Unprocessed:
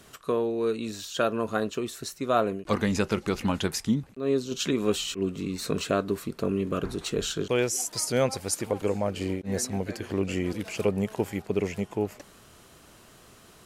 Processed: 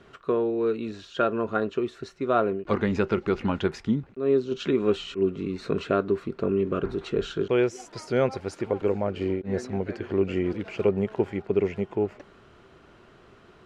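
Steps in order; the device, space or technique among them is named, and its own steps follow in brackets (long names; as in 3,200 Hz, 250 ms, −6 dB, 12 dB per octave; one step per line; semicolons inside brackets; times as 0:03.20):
inside a cardboard box (low-pass filter 2,700 Hz 12 dB per octave; hollow resonant body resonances 380/1,400 Hz, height 7 dB)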